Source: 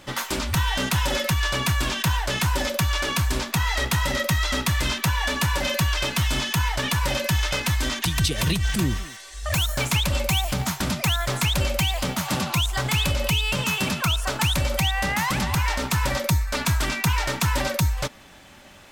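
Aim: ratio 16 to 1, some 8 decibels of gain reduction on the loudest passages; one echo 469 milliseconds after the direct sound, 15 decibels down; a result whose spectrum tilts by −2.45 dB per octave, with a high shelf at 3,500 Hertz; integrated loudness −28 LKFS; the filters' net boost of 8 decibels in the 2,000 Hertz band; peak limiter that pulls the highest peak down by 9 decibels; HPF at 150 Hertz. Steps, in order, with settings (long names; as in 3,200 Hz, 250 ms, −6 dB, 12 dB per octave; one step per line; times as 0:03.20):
high-pass filter 150 Hz
parametric band 2,000 Hz +7.5 dB
high-shelf EQ 3,500 Hz +7.5 dB
downward compressor 16 to 1, threshold −23 dBFS
brickwall limiter −17.5 dBFS
single-tap delay 469 ms −15 dB
level −1.5 dB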